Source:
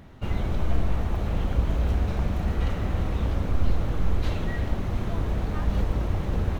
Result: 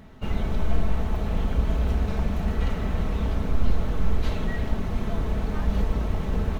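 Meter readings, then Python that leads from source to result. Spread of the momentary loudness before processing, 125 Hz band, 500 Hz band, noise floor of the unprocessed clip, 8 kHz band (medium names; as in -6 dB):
3 LU, -1.0 dB, +1.0 dB, -30 dBFS, no reading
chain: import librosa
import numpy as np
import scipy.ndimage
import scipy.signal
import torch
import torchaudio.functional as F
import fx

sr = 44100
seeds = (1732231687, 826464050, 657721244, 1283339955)

y = x + 0.41 * np.pad(x, (int(4.6 * sr / 1000.0), 0))[:len(x)]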